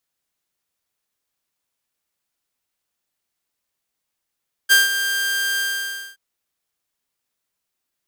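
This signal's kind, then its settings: ADSR saw 1.59 kHz, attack 29 ms, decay 162 ms, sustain -10.5 dB, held 0.90 s, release 574 ms -6.5 dBFS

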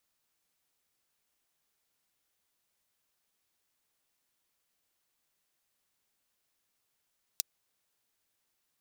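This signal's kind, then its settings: closed hi-hat, high-pass 4.4 kHz, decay 0.02 s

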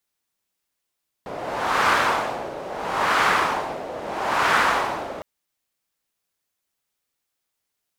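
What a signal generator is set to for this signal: wind-like swept noise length 3.96 s, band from 580 Hz, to 1.3 kHz, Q 1.8, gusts 3, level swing 14.5 dB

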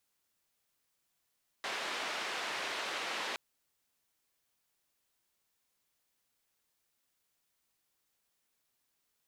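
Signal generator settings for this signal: noise band 410–2900 Hz, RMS -38 dBFS 1.72 s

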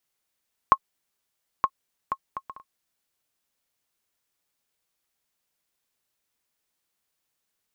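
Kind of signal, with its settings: bouncing ball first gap 0.92 s, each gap 0.52, 1.08 kHz, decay 58 ms -4 dBFS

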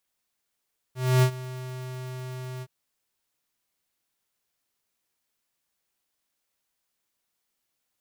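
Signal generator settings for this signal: ADSR square 128 Hz, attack 274 ms, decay 81 ms, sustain -18.5 dB, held 1.67 s, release 48 ms -17.5 dBFS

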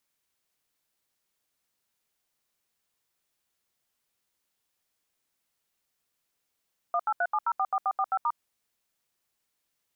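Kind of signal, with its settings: DTMF "1837044445*", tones 55 ms, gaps 76 ms, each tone -26 dBFS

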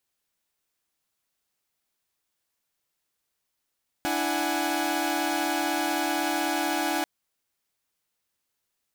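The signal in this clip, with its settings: chord D4/E4/F#5/G#5 saw, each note -28 dBFS 2.99 s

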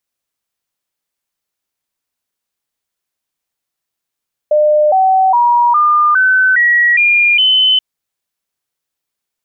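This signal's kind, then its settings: stepped sine 603 Hz up, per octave 3, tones 8, 0.41 s, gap 0.00 s -7 dBFS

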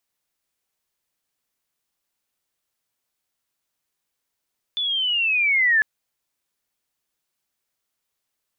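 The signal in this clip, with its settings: sweep linear 3.5 kHz -> 1.7 kHz -21.5 dBFS -> -14 dBFS 1.05 s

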